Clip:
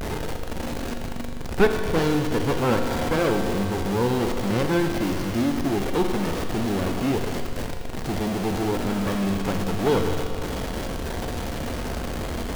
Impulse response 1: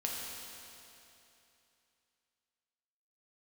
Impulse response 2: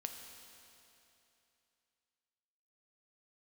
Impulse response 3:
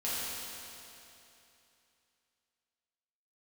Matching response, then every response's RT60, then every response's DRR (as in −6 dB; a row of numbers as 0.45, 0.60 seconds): 2; 2.9, 2.9, 2.9 seconds; −3.0, 4.0, −10.5 decibels